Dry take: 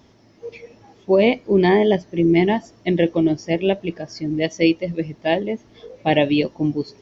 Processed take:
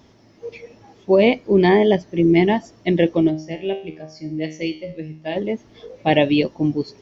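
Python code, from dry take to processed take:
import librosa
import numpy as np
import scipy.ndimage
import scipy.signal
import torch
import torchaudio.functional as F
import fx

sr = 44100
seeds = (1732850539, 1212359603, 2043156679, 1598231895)

y = fx.comb_fb(x, sr, f0_hz=78.0, decay_s=0.46, harmonics='all', damping=0.0, mix_pct=80, at=(3.29, 5.35), fade=0.02)
y = y * 10.0 ** (1.0 / 20.0)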